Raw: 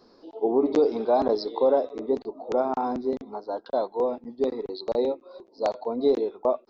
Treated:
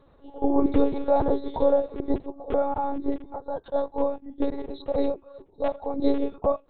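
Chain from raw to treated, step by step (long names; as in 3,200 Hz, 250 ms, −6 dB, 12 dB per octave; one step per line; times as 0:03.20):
dynamic equaliser 330 Hz, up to +6 dB, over −38 dBFS, Q 4
one-pitch LPC vocoder at 8 kHz 280 Hz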